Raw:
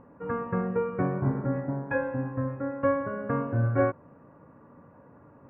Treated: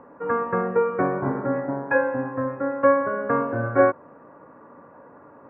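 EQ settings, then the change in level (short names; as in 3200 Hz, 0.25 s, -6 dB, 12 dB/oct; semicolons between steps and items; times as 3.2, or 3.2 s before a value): three-band isolator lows -14 dB, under 260 Hz, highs -22 dB, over 2000 Hz; high shelf 2100 Hz +11 dB; +7.5 dB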